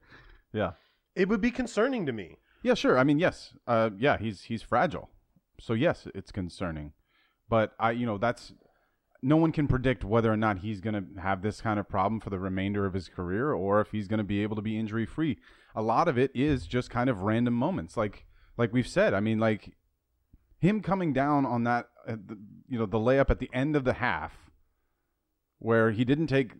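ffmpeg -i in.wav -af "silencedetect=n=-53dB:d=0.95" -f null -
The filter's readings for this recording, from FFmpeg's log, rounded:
silence_start: 24.49
silence_end: 25.61 | silence_duration: 1.12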